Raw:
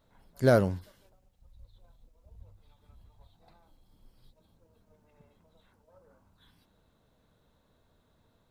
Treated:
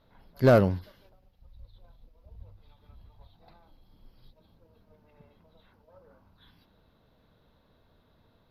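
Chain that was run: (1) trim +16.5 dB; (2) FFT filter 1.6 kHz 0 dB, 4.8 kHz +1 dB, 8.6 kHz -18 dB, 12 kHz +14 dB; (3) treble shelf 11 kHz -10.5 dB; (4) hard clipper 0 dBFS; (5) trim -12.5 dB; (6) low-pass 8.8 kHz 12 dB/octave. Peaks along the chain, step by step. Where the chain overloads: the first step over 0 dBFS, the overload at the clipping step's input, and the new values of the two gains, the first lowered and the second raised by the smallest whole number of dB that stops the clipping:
+6.0 dBFS, +6.5 dBFS, +6.0 dBFS, 0.0 dBFS, -12.5 dBFS, -12.5 dBFS; step 1, 6.0 dB; step 1 +10.5 dB, step 5 -6.5 dB

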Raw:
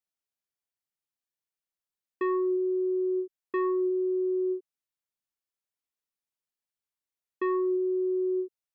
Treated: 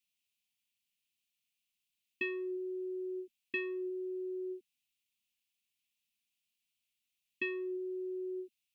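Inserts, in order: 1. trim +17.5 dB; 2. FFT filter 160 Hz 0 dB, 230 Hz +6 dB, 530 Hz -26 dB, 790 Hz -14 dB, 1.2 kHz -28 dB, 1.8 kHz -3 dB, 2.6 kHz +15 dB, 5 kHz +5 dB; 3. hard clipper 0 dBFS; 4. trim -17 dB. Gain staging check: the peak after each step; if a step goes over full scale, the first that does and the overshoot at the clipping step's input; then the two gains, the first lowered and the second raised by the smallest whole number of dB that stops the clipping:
-5.0 dBFS, -6.0 dBFS, -6.0 dBFS, -23.0 dBFS; nothing clips

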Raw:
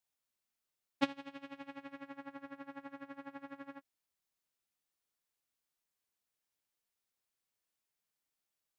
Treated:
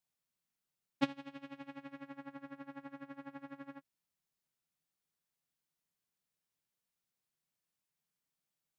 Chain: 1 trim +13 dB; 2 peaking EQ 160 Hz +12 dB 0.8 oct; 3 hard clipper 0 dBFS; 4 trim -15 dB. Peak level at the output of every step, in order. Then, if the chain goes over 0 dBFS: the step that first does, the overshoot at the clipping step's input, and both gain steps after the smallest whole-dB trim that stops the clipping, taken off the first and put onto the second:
-2.5 dBFS, -3.5 dBFS, -3.5 dBFS, -18.5 dBFS; nothing clips

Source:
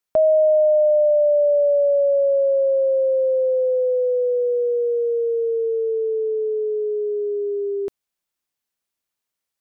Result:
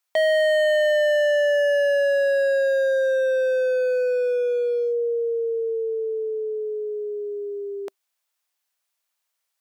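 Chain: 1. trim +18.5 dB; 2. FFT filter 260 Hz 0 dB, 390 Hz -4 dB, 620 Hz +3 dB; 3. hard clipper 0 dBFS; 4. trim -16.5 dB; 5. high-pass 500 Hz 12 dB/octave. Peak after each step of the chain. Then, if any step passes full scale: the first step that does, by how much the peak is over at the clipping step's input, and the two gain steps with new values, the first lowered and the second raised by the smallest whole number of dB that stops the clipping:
+7.0 dBFS, +10.0 dBFS, 0.0 dBFS, -16.5 dBFS, -12.0 dBFS; step 1, 10.0 dB; step 1 +8.5 dB, step 4 -6.5 dB

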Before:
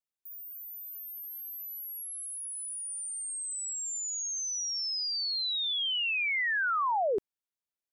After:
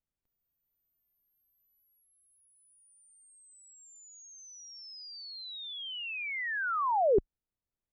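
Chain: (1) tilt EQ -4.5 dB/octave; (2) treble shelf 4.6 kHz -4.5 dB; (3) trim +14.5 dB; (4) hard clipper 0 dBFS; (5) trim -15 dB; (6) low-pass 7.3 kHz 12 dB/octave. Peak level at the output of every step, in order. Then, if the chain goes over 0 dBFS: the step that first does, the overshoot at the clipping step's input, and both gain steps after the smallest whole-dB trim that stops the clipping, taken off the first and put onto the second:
-18.0 dBFS, -18.0 dBFS, -3.5 dBFS, -3.5 dBFS, -18.5 dBFS, -18.5 dBFS; nothing clips

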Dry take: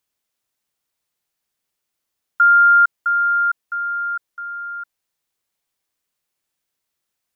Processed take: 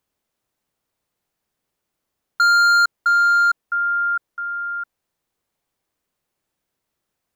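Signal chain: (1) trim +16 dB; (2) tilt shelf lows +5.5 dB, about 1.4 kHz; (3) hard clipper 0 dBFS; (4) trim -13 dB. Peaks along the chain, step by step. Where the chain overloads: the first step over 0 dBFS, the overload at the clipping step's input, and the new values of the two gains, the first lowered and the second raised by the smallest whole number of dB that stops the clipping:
+8.0 dBFS, +8.0 dBFS, 0.0 dBFS, -13.0 dBFS; step 1, 8.0 dB; step 1 +8 dB, step 4 -5 dB

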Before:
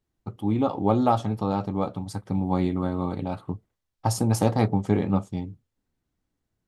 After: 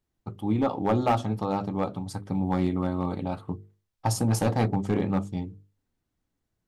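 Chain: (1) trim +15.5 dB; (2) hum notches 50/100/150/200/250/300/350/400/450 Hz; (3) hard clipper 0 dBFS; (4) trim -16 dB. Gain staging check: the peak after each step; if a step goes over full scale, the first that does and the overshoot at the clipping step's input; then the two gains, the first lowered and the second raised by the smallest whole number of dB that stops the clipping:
+9.0 dBFS, +8.5 dBFS, 0.0 dBFS, -16.0 dBFS; step 1, 8.5 dB; step 1 +6.5 dB, step 4 -7 dB

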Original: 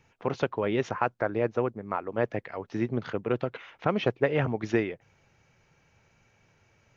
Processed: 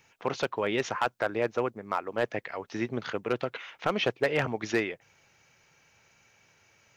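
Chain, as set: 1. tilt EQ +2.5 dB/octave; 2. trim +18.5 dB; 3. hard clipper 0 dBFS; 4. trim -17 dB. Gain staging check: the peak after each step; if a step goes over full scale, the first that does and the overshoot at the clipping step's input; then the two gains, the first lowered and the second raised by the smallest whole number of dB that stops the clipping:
-10.5 dBFS, +8.0 dBFS, 0.0 dBFS, -17.0 dBFS; step 2, 8.0 dB; step 2 +10.5 dB, step 4 -9 dB

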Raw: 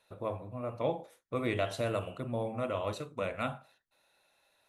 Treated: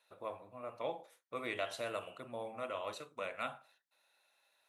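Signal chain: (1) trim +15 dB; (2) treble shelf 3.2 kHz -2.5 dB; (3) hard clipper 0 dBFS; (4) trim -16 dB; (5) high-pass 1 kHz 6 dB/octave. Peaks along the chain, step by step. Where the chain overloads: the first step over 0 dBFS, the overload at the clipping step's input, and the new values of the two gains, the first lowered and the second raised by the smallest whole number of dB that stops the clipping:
-3.5 dBFS, -3.5 dBFS, -3.5 dBFS, -19.5 dBFS, -24.0 dBFS; nothing clips

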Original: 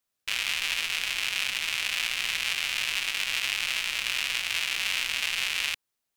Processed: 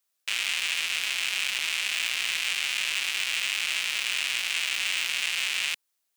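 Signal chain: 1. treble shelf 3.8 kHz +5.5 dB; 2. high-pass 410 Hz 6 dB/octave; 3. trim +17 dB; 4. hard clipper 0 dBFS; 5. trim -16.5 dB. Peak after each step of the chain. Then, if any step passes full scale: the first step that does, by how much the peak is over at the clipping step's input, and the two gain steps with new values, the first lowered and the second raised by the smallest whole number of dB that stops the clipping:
-6.5 dBFS, -7.0 dBFS, +10.0 dBFS, 0.0 dBFS, -16.5 dBFS; step 3, 10.0 dB; step 3 +7 dB, step 5 -6.5 dB

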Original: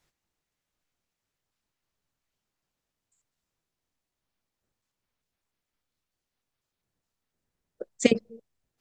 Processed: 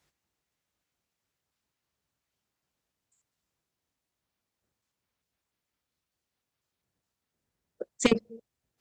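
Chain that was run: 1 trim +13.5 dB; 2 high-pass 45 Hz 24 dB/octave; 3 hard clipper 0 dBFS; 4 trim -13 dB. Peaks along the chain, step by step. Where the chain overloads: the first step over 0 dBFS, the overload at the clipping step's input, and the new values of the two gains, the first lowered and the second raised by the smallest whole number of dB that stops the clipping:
+9.5 dBFS, +9.5 dBFS, 0.0 dBFS, -13.0 dBFS; step 1, 9.5 dB; step 1 +3.5 dB, step 4 -3 dB

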